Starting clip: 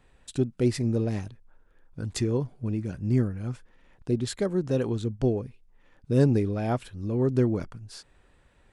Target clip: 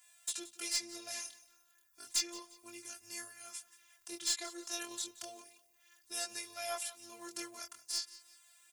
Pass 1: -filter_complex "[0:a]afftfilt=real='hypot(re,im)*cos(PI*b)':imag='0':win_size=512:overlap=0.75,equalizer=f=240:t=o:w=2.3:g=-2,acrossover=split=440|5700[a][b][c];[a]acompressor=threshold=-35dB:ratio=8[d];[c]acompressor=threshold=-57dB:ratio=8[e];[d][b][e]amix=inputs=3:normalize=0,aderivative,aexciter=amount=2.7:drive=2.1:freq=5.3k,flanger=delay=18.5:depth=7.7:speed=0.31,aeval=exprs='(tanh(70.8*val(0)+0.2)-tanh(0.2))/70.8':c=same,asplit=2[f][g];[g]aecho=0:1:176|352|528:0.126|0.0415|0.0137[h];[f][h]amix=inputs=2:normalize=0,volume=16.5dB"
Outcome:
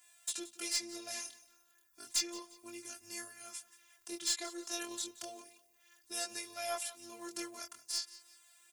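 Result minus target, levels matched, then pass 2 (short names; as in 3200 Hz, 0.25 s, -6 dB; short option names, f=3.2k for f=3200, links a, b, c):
250 Hz band +3.5 dB
-filter_complex "[0:a]afftfilt=real='hypot(re,im)*cos(PI*b)':imag='0':win_size=512:overlap=0.75,equalizer=f=240:t=o:w=2.3:g=-8.5,acrossover=split=440|5700[a][b][c];[a]acompressor=threshold=-35dB:ratio=8[d];[c]acompressor=threshold=-57dB:ratio=8[e];[d][b][e]amix=inputs=3:normalize=0,aderivative,aexciter=amount=2.7:drive=2.1:freq=5.3k,flanger=delay=18.5:depth=7.7:speed=0.31,aeval=exprs='(tanh(70.8*val(0)+0.2)-tanh(0.2))/70.8':c=same,asplit=2[f][g];[g]aecho=0:1:176|352|528:0.126|0.0415|0.0137[h];[f][h]amix=inputs=2:normalize=0,volume=16.5dB"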